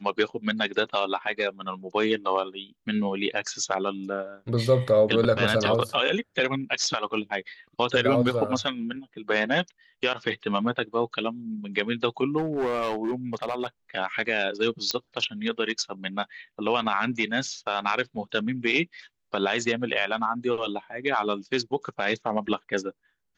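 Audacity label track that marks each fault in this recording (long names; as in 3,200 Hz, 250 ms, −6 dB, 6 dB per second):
12.370000	13.660000	clipping −22.5 dBFS
14.910000	14.910000	click −10 dBFS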